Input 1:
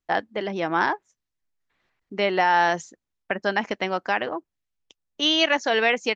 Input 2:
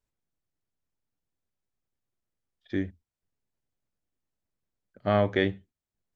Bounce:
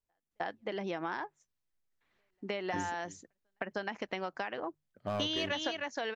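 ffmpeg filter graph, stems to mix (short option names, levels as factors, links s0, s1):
-filter_complex "[0:a]bandreject=f=50:t=h:w=6,bandreject=f=100:t=h:w=6,bandreject=f=150:t=h:w=6,acompressor=threshold=0.0447:ratio=6,volume=1.12,asplit=2[s0][s1];[s1]volume=0.501[s2];[1:a]volume=9.44,asoftclip=hard,volume=0.106,volume=0.422,asplit=3[s3][s4][s5];[s4]volume=0.106[s6];[s5]apad=whole_len=271267[s7];[s0][s7]sidechaingate=range=0.00224:threshold=0.00112:ratio=16:detection=peak[s8];[s2][s6]amix=inputs=2:normalize=0,aecho=0:1:311:1[s9];[s8][s3][s9]amix=inputs=3:normalize=0,acompressor=threshold=0.0282:ratio=4"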